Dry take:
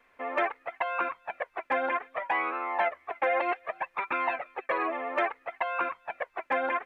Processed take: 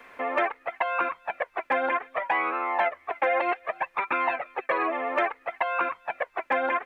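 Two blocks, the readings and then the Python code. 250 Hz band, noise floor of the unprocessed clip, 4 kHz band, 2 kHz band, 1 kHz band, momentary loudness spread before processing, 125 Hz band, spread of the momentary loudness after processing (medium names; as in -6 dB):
+3.0 dB, -66 dBFS, +3.0 dB, +3.0 dB, +3.5 dB, 6 LU, no reading, 5 LU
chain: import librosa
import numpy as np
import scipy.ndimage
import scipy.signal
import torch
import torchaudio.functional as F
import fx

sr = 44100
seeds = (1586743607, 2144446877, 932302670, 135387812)

y = fx.band_squash(x, sr, depth_pct=40)
y = y * librosa.db_to_amplitude(3.0)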